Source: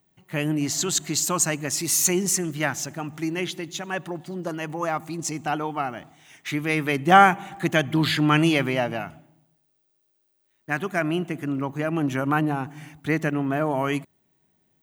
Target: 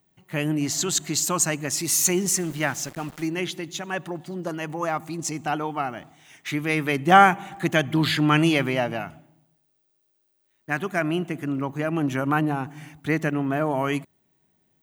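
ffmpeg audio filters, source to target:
-filter_complex "[0:a]asettb=1/sr,asplit=3[a][b][c];[a]atrim=end=2.044[d];[b]atrim=start=2.04:end=3.27,asetpts=PTS-STARTPTS,afade=t=in:d=0.004:c=qsin,afade=t=out:st=1.226:d=0.004:c=qsin,aeval=exprs='val(0)*gte(abs(val(0)),0.0119)':c=same[e];[c]atrim=start=3.266[f];[d][e]acrossfade=d=0.004:c1=hsin:c2=qsin[g];[g][f]acrossfade=d=0.004:c1=qsin:c2=hsin"

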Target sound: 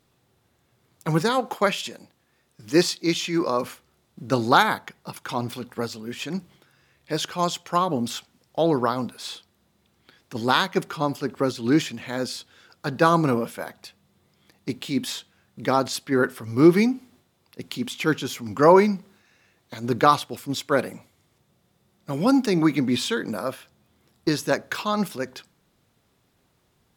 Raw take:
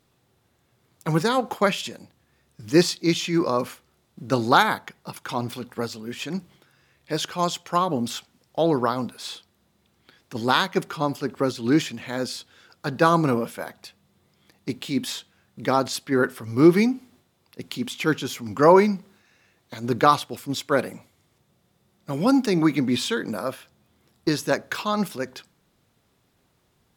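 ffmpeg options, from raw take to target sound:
-filter_complex "[0:a]asettb=1/sr,asplit=3[a][b][c];[a]atrim=end=1.294[d];[b]atrim=start=1.29:end=3.64,asetpts=PTS-STARTPTS,afade=t=in:d=0.004:c=qsin,afade=t=out:st=2.346:d=0.004:c=qsin,lowshelf=f=120:g=-12[e];[c]atrim=start=3.636[f];[d][e]acrossfade=d=0.004:c1=hsin:c2=qsin[g];[g][f]acrossfade=d=0.004:c1=qsin:c2=hsin"

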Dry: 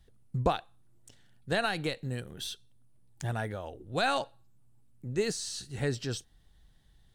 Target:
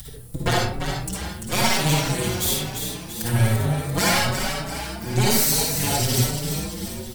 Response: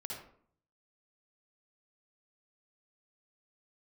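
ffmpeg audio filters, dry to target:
-filter_complex "[0:a]aeval=exprs='0.211*(cos(1*acos(clip(val(0)/0.211,-1,1)))-cos(1*PI/2))+0.0944*(cos(6*acos(clip(val(0)/0.211,-1,1)))-cos(6*PI/2))':c=same,equalizer=f=93:w=2.4:g=11,acompressor=mode=upward:threshold=-32dB:ratio=2.5,asplit=2[a][b];[b]alimiter=limit=-20.5dB:level=0:latency=1,volume=1dB[c];[a][c]amix=inputs=2:normalize=0,asoftclip=type=tanh:threshold=-10dB,aemphasis=mode=production:type=75fm,acrossover=split=420|2800[d][e][f];[f]asoftclip=type=hard:threshold=-13dB[g];[d][e][g]amix=inputs=3:normalize=0,asplit=8[h][i][j][k][l][m][n][o];[i]adelay=342,afreqshift=31,volume=-7dB[p];[j]adelay=684,afreqshift=62,volume=-12.2dB[q];[k]adelay=1026,afreqshift=93,volume=-17.4dB[r];[l]adelay=1368,afreqshift=124,volume=-22.6dB[s];[m]adelay=1710,afreqshift=155,volume=-27.8dB[t];[n]adelay=2052,afreqshift=186,volume=-33dB[u];[o]adelay=2394,afreqshift=217,volume=-38.2dB[v];[h][p][q][r][s][t][u][v]amix=inputs=8:normalize=0[w];[1:a]atrim=start_sample=2205[x];[w][x]afir=irnorm=-1:irlink=0,asplit=2[y][z];[z]adelay=4.8,afreqshift=1.1[aa];[y][aa]amix=inputs=2:normalize=1,volume=6dB"

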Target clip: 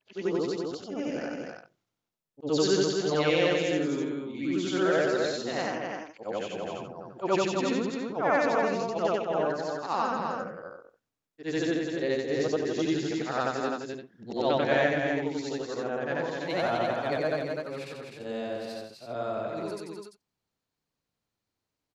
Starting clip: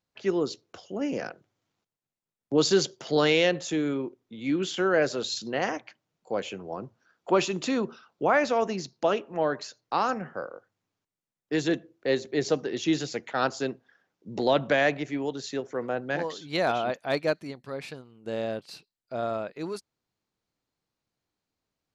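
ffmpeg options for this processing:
-af "afftfilt=real='re':imag='-im':win_size=8192:overlap=0.75,aecho=1:1:253:0.596,adynamicequalizer=threshold=0.00708:dfrequency=2400:dqfactor=0.7:tfrequency=2400:tqfactor=0.7:attack=5:release=100:ratio=0.375:range=2.5:mode=cutabove:tftype=highshelf,volume=2.5dB"

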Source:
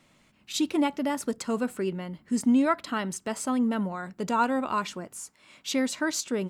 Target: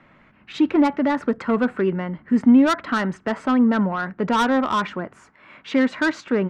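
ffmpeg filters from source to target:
-filter_complex "[0:a]lowpass=f=1.7k:t=q:w=1.8,acrossover=split=360[a][b];[b]asoftclip=type=tanh:threshold=-25.5dB[c];[a][c]amix=inputs=2:normalize=0,volume=8.5dB"

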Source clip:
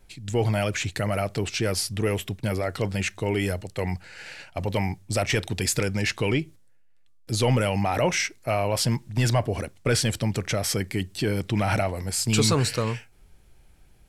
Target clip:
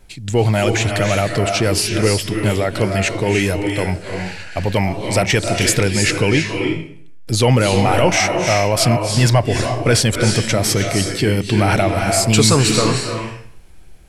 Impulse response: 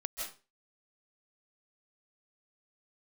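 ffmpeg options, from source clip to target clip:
-filter_complex "[0:a]asplit=2[a][b];[1:a]atrim=start_sample=2205,asetrate=22932,aresample=44100[c];[b][c]afir=irnorm=-1:irlink=0,volume=-2dB[d];[a][d]amix=inputs=2:normalize=0,volume=2.5dB"

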